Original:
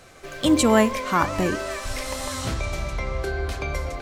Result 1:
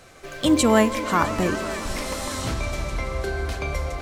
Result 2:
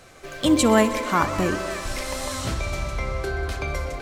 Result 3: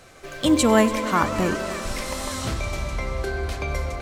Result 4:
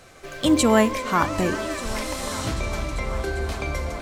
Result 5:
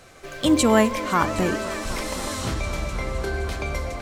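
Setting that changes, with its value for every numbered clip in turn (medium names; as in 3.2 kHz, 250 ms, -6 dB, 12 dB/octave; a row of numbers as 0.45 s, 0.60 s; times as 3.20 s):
multi-head delay, time: 164 ms, 63 ms, 96 ms, 395 ms, 256 ms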